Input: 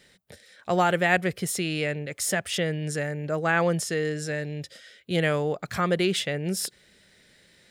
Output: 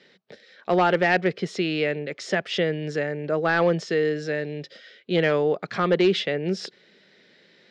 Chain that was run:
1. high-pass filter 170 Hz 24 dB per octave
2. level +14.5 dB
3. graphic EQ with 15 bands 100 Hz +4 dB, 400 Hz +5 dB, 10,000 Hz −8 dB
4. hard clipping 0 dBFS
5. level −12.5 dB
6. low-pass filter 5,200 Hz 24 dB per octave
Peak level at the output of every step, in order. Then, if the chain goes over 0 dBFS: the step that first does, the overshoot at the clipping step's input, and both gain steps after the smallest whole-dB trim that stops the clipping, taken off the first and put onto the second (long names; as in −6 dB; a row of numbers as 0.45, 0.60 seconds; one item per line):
−6.0, +8.5, +8.5, 0.0, −12.5, −11.5 dBFS
step 2, 8.5 dB
step 2 +5.5 dB, step 5 −3.5 dB